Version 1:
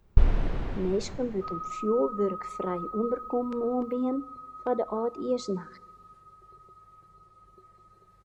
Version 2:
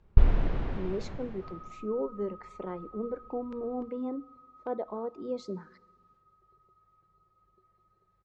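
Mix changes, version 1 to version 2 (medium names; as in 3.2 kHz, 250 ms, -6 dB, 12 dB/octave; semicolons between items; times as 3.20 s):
speech -6.0 dB; second sound -11.5 dB; master: add distance through air 94 m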